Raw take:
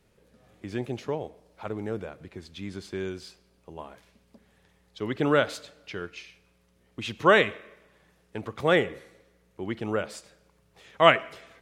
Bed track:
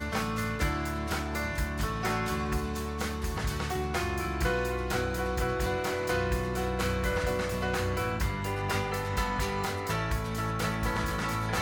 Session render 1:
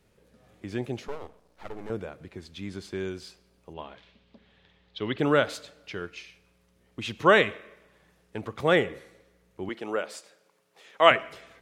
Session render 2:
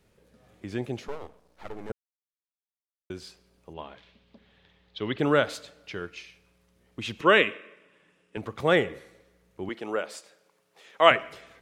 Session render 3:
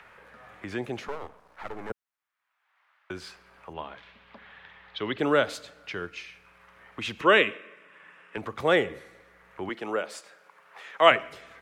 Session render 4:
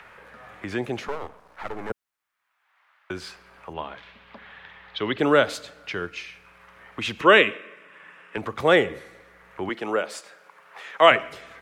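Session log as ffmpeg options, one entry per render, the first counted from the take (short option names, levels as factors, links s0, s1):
-filter_complex "[0:a]asettb=1/sr,asplit=3[s0][s1][s2];[s0]atrim=end=1.084[s3];[s1]atrim=start=1.08:end=1.9,asetpts=PTS-STARTPTS,afade=t=in:d=0.004:c=qsin,afade=t=out:st=0.816:d=0.004:c=qsin,aeval=exprs='max(val(0),0)':c=same[s4];[s2]atrim=start=1.896[s5];[s3][s4]acrossfade=d=0.004:c1=hsin:c2=qsin[s6];[s6][s5]acrossfade=d=0.004:c1=qsin:c2=hsin,asplit=3[s7][s8][s9];[s7]afade=t=out:st=3.73:d=0.02[s10];[s8]lowpass=f=3500:t=q:w=2.5,afade=t=in:st=3.73:d=0.02,afade=t=out:st=5.17:d=0.02[s11];[s9]afade=t=in:st=5.17:d=0.02[s12];[s10][s11][s12]amix=inputs=3:normalize=0,asettb=1/sr,asplit=3[s13][s14][s15];[s13]atrim=end=9.694[s16];[s14]atrim=start=9.69:end=11.11,asetpts=PTS-STARTPTS,afade=t=in:d=0.004:c=qsin,afade=t=out:st=1.416:d=0.004:c=qsin,highpass=330[s17];[s15]atrim=start=11.106[s18];[s16][s17]acrossfade=d=0.004:c1=hsin:c2=qsin[s19];[s19][s18]acrossfade=d=0.004:c1=qsin:c2=hsin"
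-filter_complex "[0:a]asettb=1/sr,asplit=3[s0][s1][s2];[s0]atrim=end=7.214[s3];[s1]atrim=start=7.21:end=8.37,asetpts=PTS-STARTPTS,afade=t=in:d=0.004:c=qsin,afade=t=out:st=1.156:d=0.004:c=qsin,highpass=200,equalizer=f=280:t=q:w=4:g=4,equalizer=f=760:t=q:w=4:g=-9,equalizer=f=2700:t=q:w=4:g=8,equalizer=f=4300:t=q:w=4:g=-9,equalizer=f=6200:t=q:w=4:g=-7,lowpass=f=9100:w=0.5412,lowpass=f=9100:w=1.3066[s4];[s2]atrim=start=8.366[s5];[s3][s4]acrossfade=d=0.004:c1=hsin:c2=qsin[s6];[s6][s5]acrossfade=d=0.004:c1=qsin:c2=hsin,asplit=3[s7][s8][s9];[s7]atrim=end=1.92,asetpts=PTS-STARTPTS,afade=t=out:st=1.916:d=0.004:c=hsin[s10];[s8]atrim=start=1.92:end=3.1,asetpts=PTS-STARTPTS,volume=0[s11];[s9]atrim=start=3.1,asetpts=PTS-STARTPTS,afade=t=in:d=0.004:c=hsin[s12];[s10][s11][s12]concat=n=3:v=0:a=1"
-filter_complex "[0:a]acrossover=split=220|950|2000[s0][s1][s2][s3];[s0]alimiter=level_in=4.73:limit=0.0631:level=0:latency=1,volume=0.211[s4];[s2]acompressor=mode=upward:threshold=0.0224:ratio=2.5[s5];[s4][s1][s5][s3]amix=inputs=4:normalize=0"
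-af "volume=1.68,alimiter=limit=0.708:level=0:latency=1"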